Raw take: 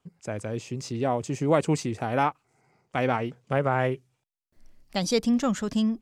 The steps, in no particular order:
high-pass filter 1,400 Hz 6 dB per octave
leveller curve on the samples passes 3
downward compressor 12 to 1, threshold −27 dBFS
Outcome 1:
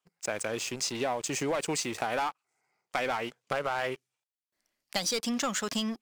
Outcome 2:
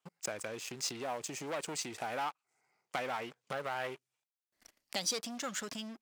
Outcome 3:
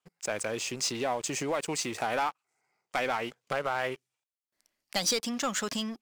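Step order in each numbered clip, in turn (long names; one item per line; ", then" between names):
high-pass filter, then leveller curve on the samples, then downward compressor
leveller curve on the samples, then downward compressor, then high-pass filter
downward compressor, then high-pass filter, then leveller curve on the samples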